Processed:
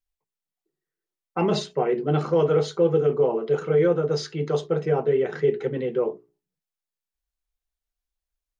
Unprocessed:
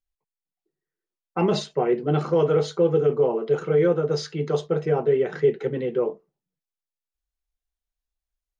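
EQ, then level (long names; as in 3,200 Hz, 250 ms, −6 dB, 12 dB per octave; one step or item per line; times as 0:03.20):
mains-hum notches 60/120/180/240/300/360/420 Hz
0.0 dB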